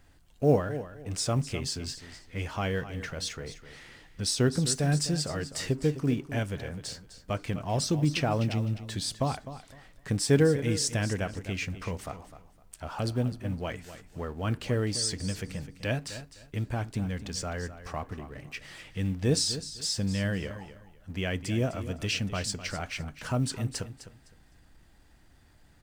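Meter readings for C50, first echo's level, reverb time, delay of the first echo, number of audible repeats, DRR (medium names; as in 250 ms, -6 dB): no reverb, -13.0 dB, no reverb, 255 ms, 2, no reverb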